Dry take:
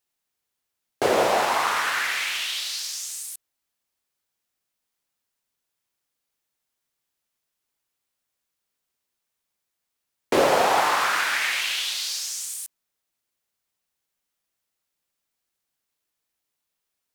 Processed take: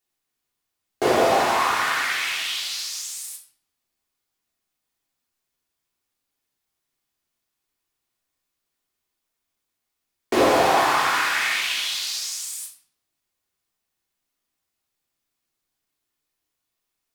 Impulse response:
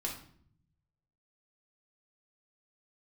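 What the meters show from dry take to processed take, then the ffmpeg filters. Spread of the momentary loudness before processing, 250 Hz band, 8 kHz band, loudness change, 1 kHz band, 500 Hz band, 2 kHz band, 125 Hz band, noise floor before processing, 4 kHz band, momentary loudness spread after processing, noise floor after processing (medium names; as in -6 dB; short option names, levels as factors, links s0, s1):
12 LU, +4.5 dB, +0.5 dB, +1.5 dB, +2.0 dB, +1.5 dB, +1.5 dB, +4.0 dB, -82 dBFS, +1.0 dB, 13 LU, -81 dBFS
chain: -filter_complex "[1:a]atrim=start_sample=2205[s0];[0:a][s0]afir=irnorm=-1:irlink=0"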